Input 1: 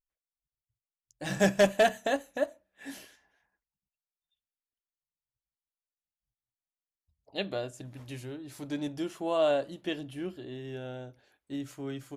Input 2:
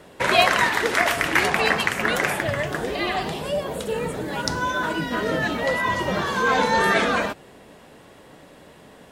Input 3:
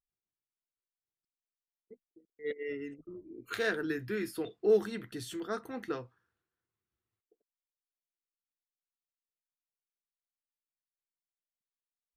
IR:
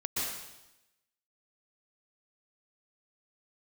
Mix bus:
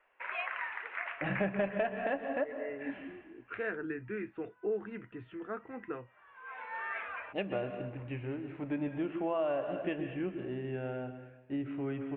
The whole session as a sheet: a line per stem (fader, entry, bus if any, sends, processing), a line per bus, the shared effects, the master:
+1.0 dB, 0.00 s, send -12 dB, none
-15.5 dB, 0.00 s, no send, high-pass 1.1 kHz 12 dB/octave; auto duck -21 dB, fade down 0.25 s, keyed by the third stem
-3.0 dB, 0.00 s, no send, none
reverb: on, RT60 0.95 s, pre-delay 113 ms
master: elliptic low-pass 2.6 kHz, stop band 50 dB; compression 5:1, threshold -30 dBFS, peak gain reduction 13 dB

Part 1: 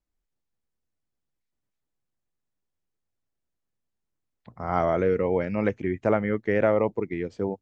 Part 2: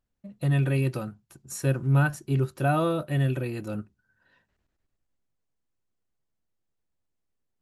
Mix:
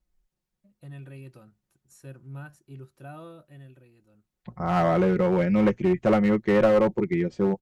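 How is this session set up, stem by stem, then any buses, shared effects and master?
+0.5 dB, 0.00 s, no send, bass shelf 180 Hz +8.5 dB; comb 5.5 ms, depth 77%; one-sided clip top -16.5 dBFS
-18.5 dB, 0.40 s, no send, auto duck -14 dB, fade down 1.20 s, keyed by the first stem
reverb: none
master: none

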